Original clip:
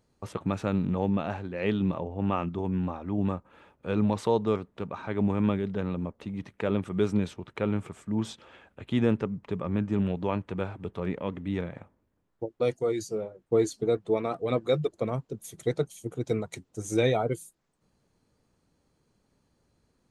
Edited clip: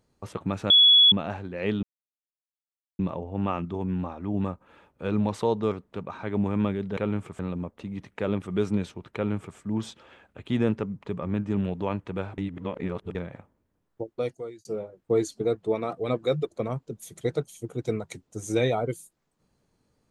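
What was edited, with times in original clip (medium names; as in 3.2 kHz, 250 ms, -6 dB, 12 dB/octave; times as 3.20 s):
0.70–1.12 s: bleep 3.38 kHz -12.5 dBFS
1.83 s: insert silence 1.16 s
7.57–7.99 s: copy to 5.81 s
10.80–11.57 s: reverse
12.49–13.07 s: fade out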